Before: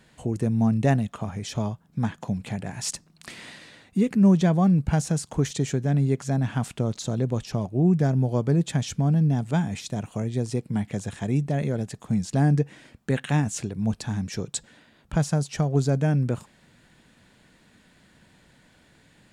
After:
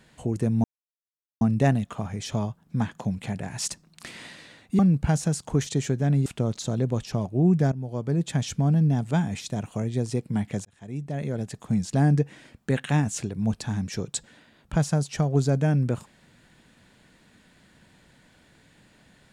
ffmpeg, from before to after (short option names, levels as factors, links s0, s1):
-filter_complex "[0:a]asplit=6[s0][s1][s2][s3][s4][s5];[s0]atrim=end=0.64,asetpts=PTS-STARTPTS,afade=t=out:st=0.636:d=0.004:c=hsin,apad=pad_dur=0.77[s6];[s1]atrim=start=0.64:end=4.022,asetpts=PTS-STARTPTS,afade=t=in:d=0.004:c=hsin[s7];[s2]atrim=start=4.628:end=6.102[s8];[s3]atrim=start=6.658:end=8.12,asetpts=PTS-STARTPTS,afade=t=out:st=1.458:d=0.004:c=hsin:silence=0.188365[s9];[s4]atrim=start=8.12:end=11.05,asetpts=PTS-STARTPTS,afade=t=in:d=0.71:silence=0.188365,afade=t=out:st=2.926:d=0.004:c=hsin[s10];[s5]atrim=start=11.05,asetpts=PTS-STARTPTS,afade=t=in:d=0.93[s11];[s6][s7]concat=n=2:v=0:a=1[s12];[s12][s8]acrossfade=d=0.004:c1=hsin:c2=hsin[s13];[s9][s10][s11]concat=n=3:v=0:a=1[s14];[s13][s14]acrossfade=d=0.004:c1=hsin:c2=hsin"